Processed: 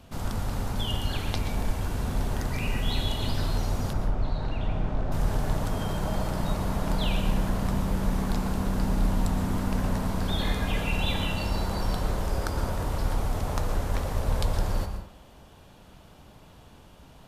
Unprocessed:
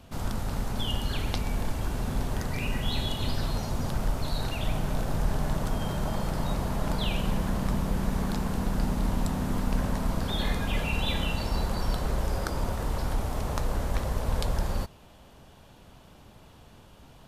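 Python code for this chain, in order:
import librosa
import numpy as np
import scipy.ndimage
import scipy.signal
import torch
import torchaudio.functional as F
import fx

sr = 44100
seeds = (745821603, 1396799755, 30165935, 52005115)

y = fx.spacing_loss(x, sr, db_at_10k=26, at=(3.93, 5.12))
y = fx.rev_plate(y, sr, seeds[0], rt60_s=0.63, hf_ratio=0.55, predelay_ms=105, drr_db=6.5)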